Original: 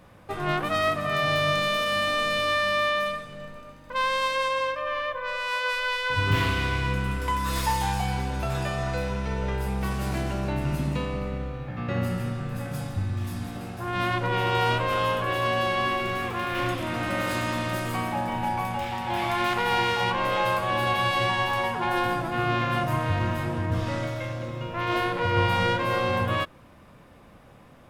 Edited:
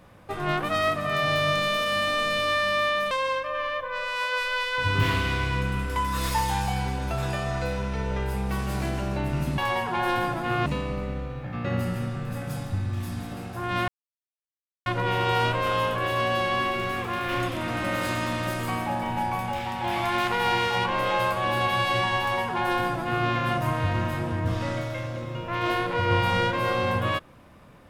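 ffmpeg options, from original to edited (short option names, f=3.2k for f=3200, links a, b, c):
-filter_complex "[0:a]asplit=5[a][b][c][d][e];[a]atrim=end=3.112[f];[b]atrim=start=4.428:end=10.902[g];[c]atrim=start=21.458:end=22.542[h];[d]atrim=start=10.898:end=14.12,asetpts=PTS-STARTPTS,afade=t=out:st=3.218:d=0.004:c=hsin,apad=pad_dur=0.98[i];[e]atrim=start=14.12,asetpts=PTS-STARTPTS,afade=t=in:d=0.004:c=hsin[j];[f][g]acrossfade=d=0.004:c1=hsin:c2=hsin[k];[k][h]acrossfade=d=0.004:c1=hsin:c2=hsin[l];[i][j]concat=n=2:v=0:a=1[m];[l][m]acrossfade=d=0.004:c1=hsin:c2=hsin"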